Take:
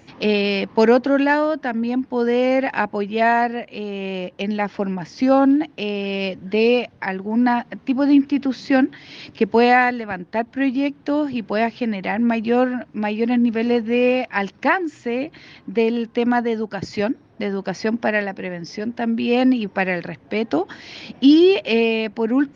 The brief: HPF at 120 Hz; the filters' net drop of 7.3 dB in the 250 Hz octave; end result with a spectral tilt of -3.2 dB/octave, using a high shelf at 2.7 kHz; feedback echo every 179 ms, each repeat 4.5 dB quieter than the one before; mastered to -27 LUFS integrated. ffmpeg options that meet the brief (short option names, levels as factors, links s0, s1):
-af "highpass=120,equalizer=f=250:t=o:g=-8,highshelf=f=2700:g=-8.5,aecho=1:1:179|358|537|716|895|1074|1253|1432|1611:0.596|0.357|0.214|0.129|0.0772|0.0463|0.0278|0.0167|0.01,volume=0.562"